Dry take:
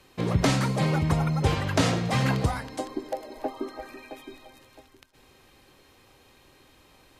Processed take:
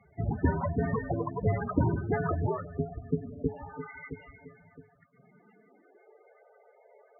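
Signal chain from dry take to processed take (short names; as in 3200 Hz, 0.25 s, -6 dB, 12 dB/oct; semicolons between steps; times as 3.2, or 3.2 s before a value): 3.54–4.1 tilt shelf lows -6 dB, about 1100 Hz; mistuned SSB -360 Hz 390–2800 Hz; high-pass sweep 80 Hz -> 500 Hz, 4.6–6.29; loudest bins only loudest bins 16; gain +2 dB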